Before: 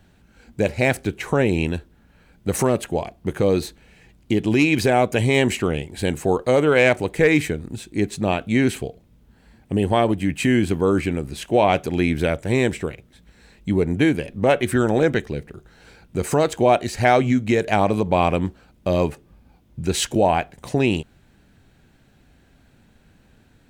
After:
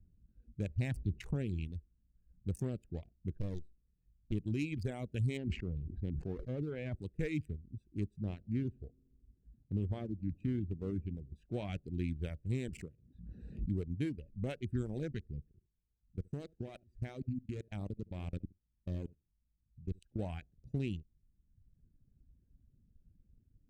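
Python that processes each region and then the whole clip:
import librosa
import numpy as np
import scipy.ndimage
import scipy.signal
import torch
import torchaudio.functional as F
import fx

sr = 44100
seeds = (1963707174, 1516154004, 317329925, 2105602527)

y = fx.chain(x, sr, fx.high_shelf(hz=10000.0, db=-6.0),
    fx.comb(ms=1.1, depth=0.35),
    fx.env_flatten(amount_pct=50), at=(0.76, 1.36))
y = fx.chain(y, sr, fx.halfwave_gain(db=-12.0),
    fx.doppler_dist(depth_ms=0.59), at=(3.35, 4.32))
y = fx.chain(y, sr, fx.spacing_loss(db_at_10k=33),
    fx.sustainer(db_per_s=30.0), at=(5.37, 6.95))
y = fx.chain(y, sr, fx.lowpass(hz=1500.0, slope=6),
    fx.echo_wet_lowpass(ms=76, feedback_pct=76, hz=590.0, wet_db=-20.0), at=(8.2, 11.36))
y = fx.chain(y, sr, fx.highpass(hz=91.0, slope=12),
    fx.pre_swell(db_per_s=25.0), at=(12.68, 13.69))
y = fx.chain(y, sr, fx.level_steps(step_db=21),
    fx.echo_single(ms=71, db=-13.0), at=(15.49, 20.19))
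y = fx.wiener(y, sr, points=41)
y = fx.dereverb_blind(y, sr, rt60_s=0.98)
y = fx.tone_stack(y, sr, knobs='10-0-1')
y = F.gain(torch.from_numpy(y), 2.0).numpy()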